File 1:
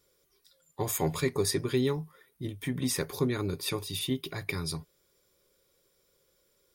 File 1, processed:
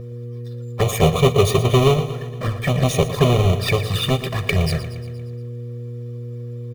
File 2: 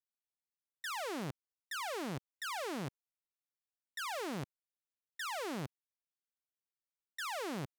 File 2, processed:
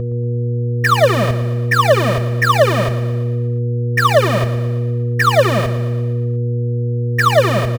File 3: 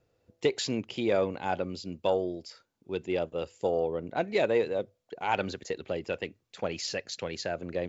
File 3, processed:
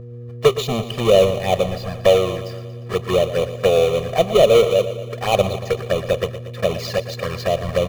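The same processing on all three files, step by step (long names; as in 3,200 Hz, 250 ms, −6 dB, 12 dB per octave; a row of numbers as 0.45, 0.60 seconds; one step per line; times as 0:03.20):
each half-wave held at its own peak
flanger swept by the level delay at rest 10.7 ms, full sweep at −25 dBFS
bass and treble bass −3 dB, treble −10 dB
hum with harmonics 120 Hz, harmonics 4, −46 dBFS −4 dB per octave
comb filter 1.7 ms, depth 89%
on a send: repeating echo 117 ms, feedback 59%, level −13 dB
on the sum: normalise the peak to −1.5 dBFS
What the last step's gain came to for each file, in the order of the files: +10.5, +23.0, +8.0 decibels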